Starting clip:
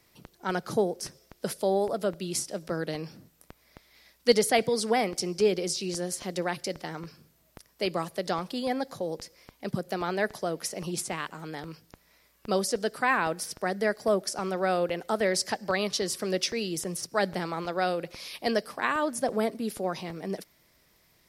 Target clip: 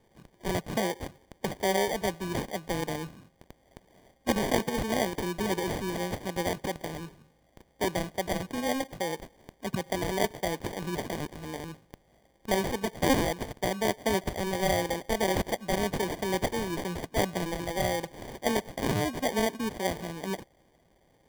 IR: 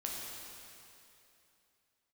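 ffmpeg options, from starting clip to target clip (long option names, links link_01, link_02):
-af "afftfilt=real='re*lt(hypot(re,im),0.631)':imag='im*lt(hypot(re,im),0.631)':win_size=1024:overlap=0.75,acrusher=samples=33:mix=1:aa=0.000001"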